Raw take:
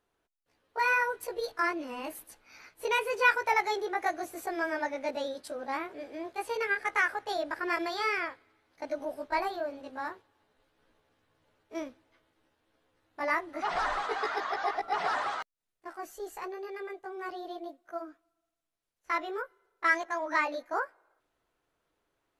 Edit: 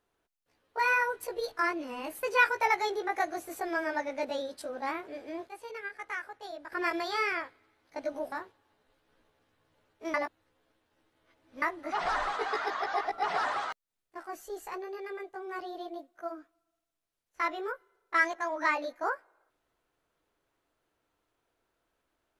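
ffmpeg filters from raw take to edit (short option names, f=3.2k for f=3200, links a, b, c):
-filter_complex "[0:a]asplit=7[a][b][c][d][e][f][g];[a]atrim=end=2.232[h];[b]atrim=start=3.088:end=6.342[i];[c]atrim=start=6.338:end=7.582,asetpts=PTS-STARTPTS,volume=-10dB[j];[d]atrim=start=7.578:end=9.182[k];[e]atrim=start=10.018:end=11.842[l];[f]atrim=start=11.838:end=13.322,asetpts=PTS-STARTPTS,areverse[m];[g]atrim=start=13.318[n];[h][i]acrossfade=d=0.004:c1=hsin:c2=hsin[o];[o][j]acrossfade=d=0.004:c1=hsin:c2=hsin[p];[p][k]acrossfade=d=0.004:c1=hsin:c2=hsin[q];[q][l]acrossfade=d=0.004:c1=hsin:c2=hsin[r];[r][m]acrossfade=d=0.004:c1=hsin:c2=hsin[s];[s][n]acrossfade=d=0.004:c1=hsin:c2=hsin"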